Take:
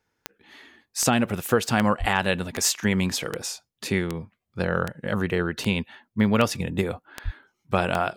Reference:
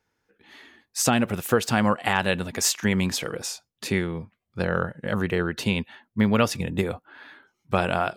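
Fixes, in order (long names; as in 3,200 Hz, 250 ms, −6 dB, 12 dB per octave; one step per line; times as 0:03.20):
click removal
0:01.99–0:02.11: high-pass filter 140 Hz 24 dB per octave
0:07.24–0:07.36: high-pass filter 140 Hz 24 dB per octave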